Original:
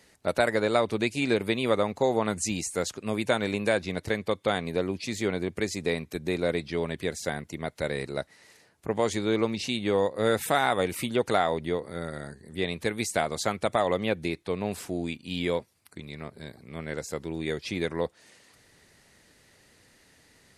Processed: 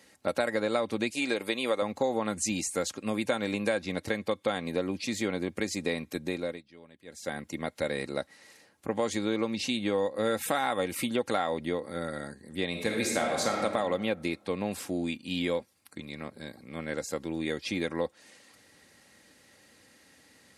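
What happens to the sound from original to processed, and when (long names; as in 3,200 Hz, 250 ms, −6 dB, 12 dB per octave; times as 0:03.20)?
0:01.10–0:01.82: bass and treble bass −12 dB, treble +3 dB
0:06.18–0:07.50: duck −22 dB, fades 0.45 s
0:12.70–0:13.64: thrown reverb, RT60 1.4 s, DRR 0 dB
whole clip: high-pass filter 94 Hz; comb filter 3.7 ms, depth 41%; downward compressor 2.5 to 1, threshold −26 dBFS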